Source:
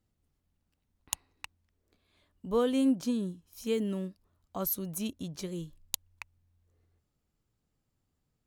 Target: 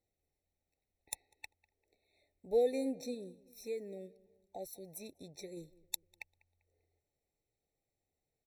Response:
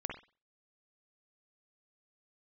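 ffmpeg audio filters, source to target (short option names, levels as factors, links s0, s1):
-filter_complex "[0:a]lowshelf=f=320:t=q:w=1.5:g=-9,asettb=1/sr,asplit=3[s0][s1][s2];[s0]atrim=end=3.144[s3];[s1]atrim=start=3.14:end=5.57,asetpts=PTS-STARTPTS,afade=t=in:d=0.004:c=qsin,afade=t=out:st=2.426:d=0.004:c=qsin,acompressor=threshold=0.00501:ratio=1.5[s4];[s2]atrim=start=5.566[s5];[s3][s4]acrossfade=d=0.004:c1=hsin:c2=qsin[s6];[s6][s5]acrossfade=d=0.004:c1=qsin:c2=hsin,asplit=2[s7][s8];[s8]adelay=197,lowpass=f=1800:p=1,volume=0.0891,asplit=2[s9][s10];[s10]adelay=197,lowpass=f=1800:p=1,volume=0.47,asplit=2[s11][s12];[s12]adelay=197,lowpass=f=1800:p=1,volume=0.47[s13];[s7][s9][s11][s13]amix=inputs=4:normalize=0,afftfilt=real='re*eq(mod(floor(b*sr/1024/890),2),0)':imag='im*eq(mod(floor(b*sr/1024/890),2),0)':win_size=1024:overlap=0.75,volume=0.708"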